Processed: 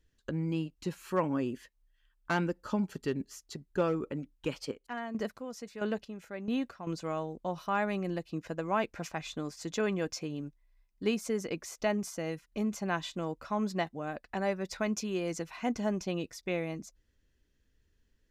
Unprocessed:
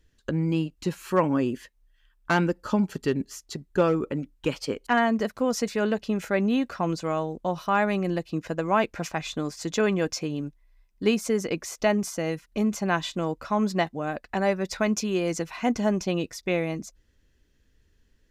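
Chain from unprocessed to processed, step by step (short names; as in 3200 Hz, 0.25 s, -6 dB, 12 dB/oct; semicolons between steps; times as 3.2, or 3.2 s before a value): 4.48–6.87 chopper 1.5 Hz, depth 65%, duty 35%; gain -7.5 dB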